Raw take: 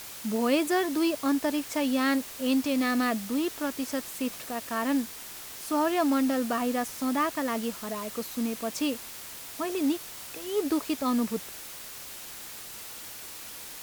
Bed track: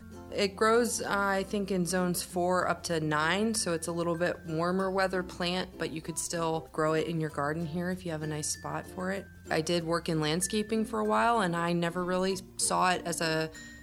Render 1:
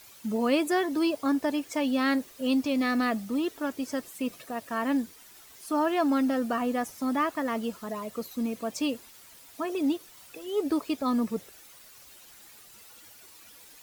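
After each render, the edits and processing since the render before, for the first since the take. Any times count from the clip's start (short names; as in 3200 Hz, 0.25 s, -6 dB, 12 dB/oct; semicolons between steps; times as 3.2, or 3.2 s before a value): denoiser 12 dB, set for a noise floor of -42 dBFS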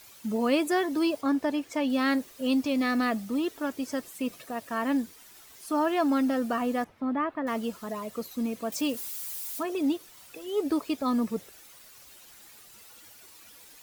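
1.21–1.9 high shelf 5600 Hz -7 dB; 6.84–7.47 air absorption 490 m; 8.72–9.63 switching spikes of -34.5 dBFS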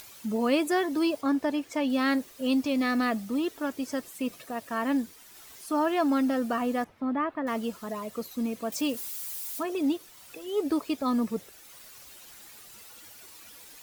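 upward compressor, threshold -43 dBFS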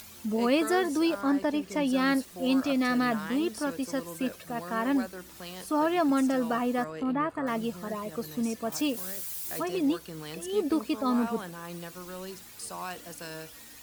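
add bed track -11.5 dB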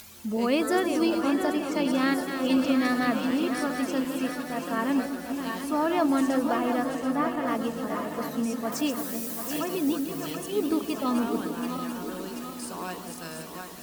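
regenerating reverse delay 0.368 s, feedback 71%, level -7.5 dB; split-band echo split 980 Hz, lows 0.162 s, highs 0.73 s, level -10.5 dB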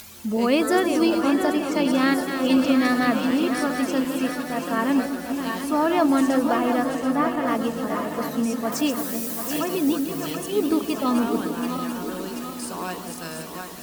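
gain +4.5 dB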